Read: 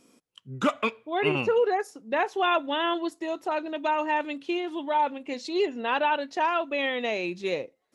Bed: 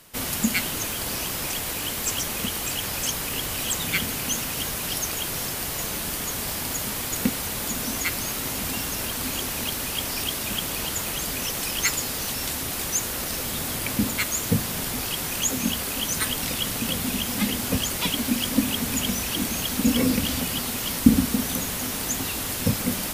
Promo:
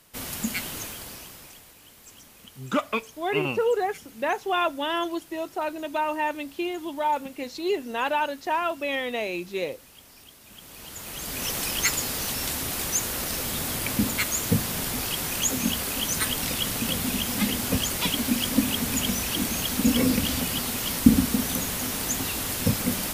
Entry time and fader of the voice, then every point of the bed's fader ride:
2.10 s, -0.5 dB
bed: 0.8 s -6 dB
1.75 s -22.5 dB
10.41 s -22.5 dB
11.49 s -0.5 dB

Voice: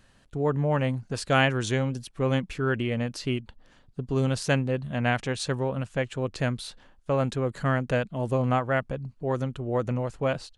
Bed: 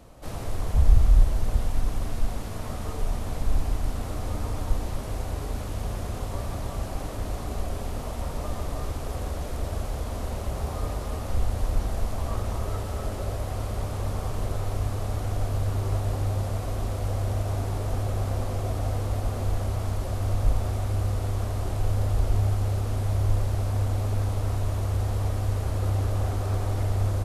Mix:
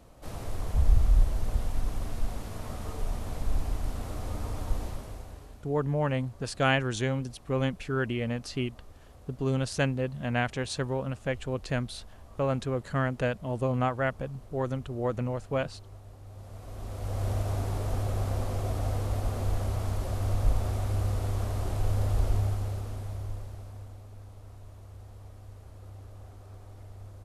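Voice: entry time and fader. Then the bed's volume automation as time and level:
5.30 s, -3.0 dB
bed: 4.85 s -4.5 dB
5.7 s -21.5 dB
16.22 s -21.5 dB
17.26 s -2.5 dB
22.27 s -2.5 dB
24.06 s -21 dB

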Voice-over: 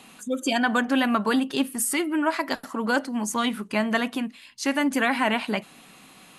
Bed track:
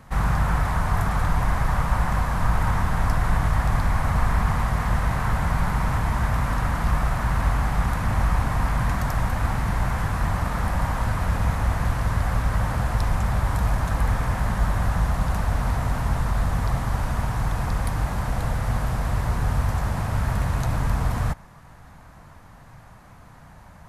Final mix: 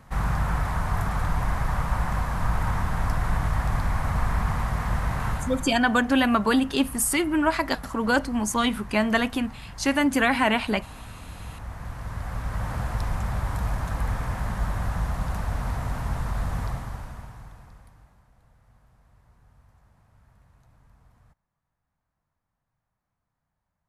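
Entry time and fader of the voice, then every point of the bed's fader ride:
5.20 s, +1.5 dB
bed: 5.28 s -3.5 dB
5.87 s -18 dB
11.27 s -18 dB
12.75 s -5 dB
16.62 s -5 dB
18.3 s -35 dB

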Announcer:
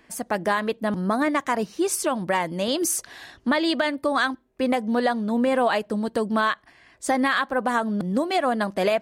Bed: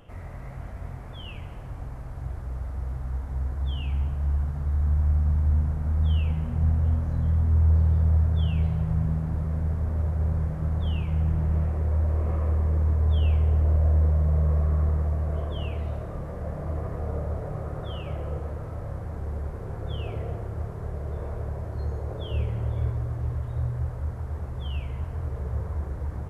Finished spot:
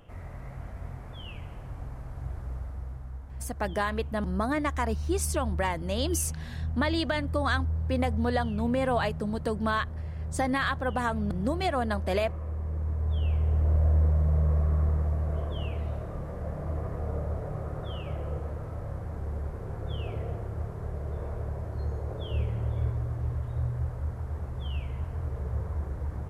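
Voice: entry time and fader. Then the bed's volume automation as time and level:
3.30 s, -6.0 dB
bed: 2.5 s -2.5 dB
3.19 s -10 dB
12.49 s -10 dB
13.78 s -2 dB

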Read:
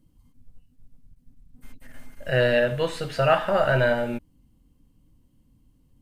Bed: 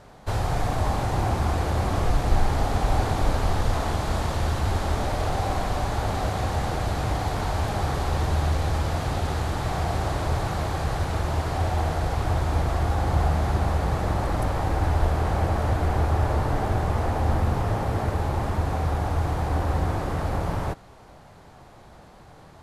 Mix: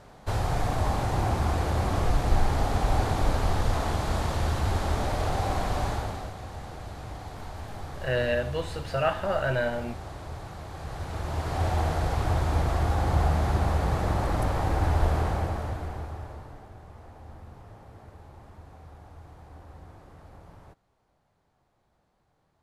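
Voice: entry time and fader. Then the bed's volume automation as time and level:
5.75 s, -6.0 dB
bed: 5.89 s -2 dB
6.35 s -13.5 dB
10.65 s -13.5 dB
11.66 s -1.5 dB
15.18 s -1.5 dB
16.7 s -23 dB

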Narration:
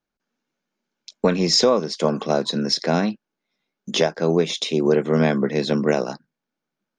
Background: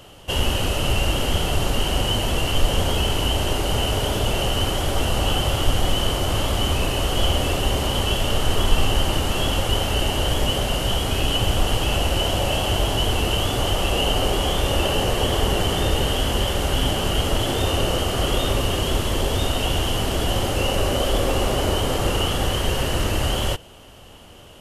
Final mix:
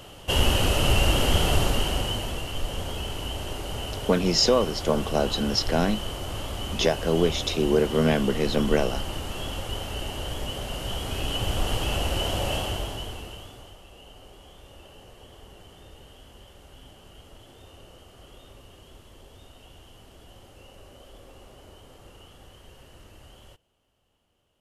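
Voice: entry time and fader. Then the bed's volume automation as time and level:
2.85 s, -3.5 dB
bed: 1.55 s 0 dB
2.47 s -11 dB
10.54 s -11 dB
11.72 s -5.5 dB
12.56 s -5.5 dB
13.83 s -28 dB

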